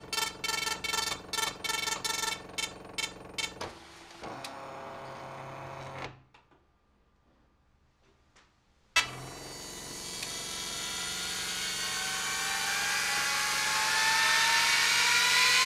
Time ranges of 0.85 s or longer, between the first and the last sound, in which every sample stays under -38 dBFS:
6.09–8.96

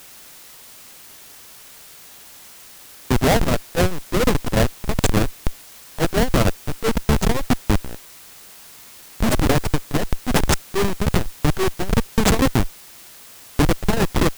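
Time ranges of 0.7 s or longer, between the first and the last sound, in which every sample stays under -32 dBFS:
7.97–9.2
12.69–13.59

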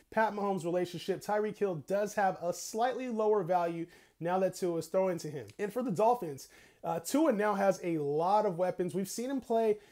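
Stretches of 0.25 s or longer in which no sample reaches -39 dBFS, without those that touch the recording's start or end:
3.84–4.21
6.43–6.84

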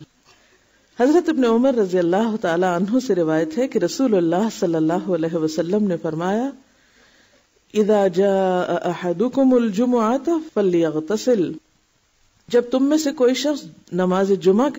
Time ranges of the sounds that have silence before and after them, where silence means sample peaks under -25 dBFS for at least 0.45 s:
1–6.5
7.75–11.53

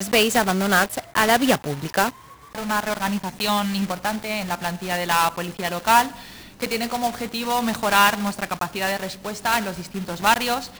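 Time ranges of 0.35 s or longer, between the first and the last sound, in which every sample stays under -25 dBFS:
2.09–2.55
6.08–6.62

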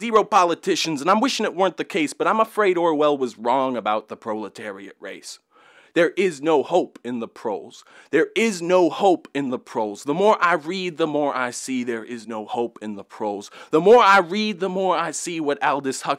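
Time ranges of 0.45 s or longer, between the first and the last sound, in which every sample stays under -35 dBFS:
5.35–5.96

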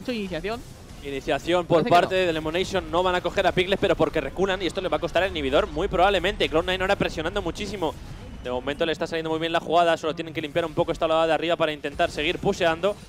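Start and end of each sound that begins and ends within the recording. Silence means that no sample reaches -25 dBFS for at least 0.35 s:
1.06–7.9

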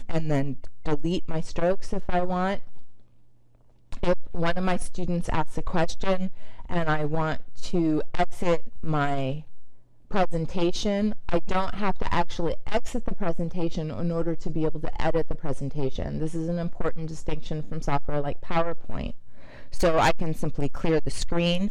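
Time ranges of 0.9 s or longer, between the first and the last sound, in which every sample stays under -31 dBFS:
2.89–3.93

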